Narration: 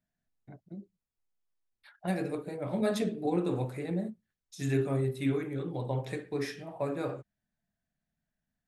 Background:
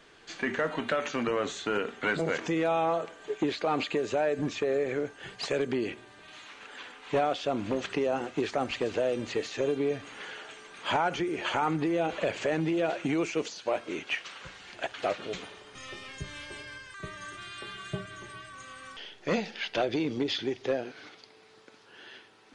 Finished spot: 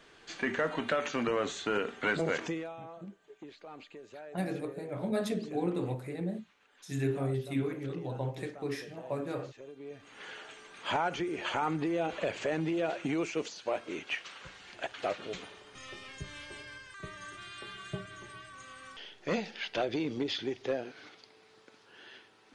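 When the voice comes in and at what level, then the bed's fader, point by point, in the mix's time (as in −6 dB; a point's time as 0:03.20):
2.30 s, −2.5 dB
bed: 0:02.44 −1.5 dB
0:02.77 −20 dB
0:09.75 −20 dB
0:10.29 −3.5 dB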